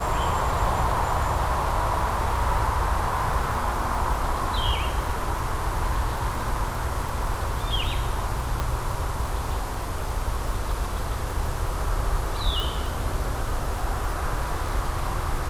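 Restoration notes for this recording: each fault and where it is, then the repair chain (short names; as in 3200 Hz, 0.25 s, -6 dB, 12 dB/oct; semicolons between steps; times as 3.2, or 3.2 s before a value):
crackle 51/s -31 dBFS
8.6 pop -13 dBFS
12.6 pop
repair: de-click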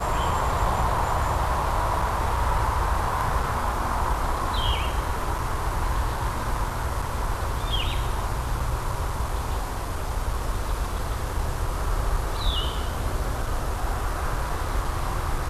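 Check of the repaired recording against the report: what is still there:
none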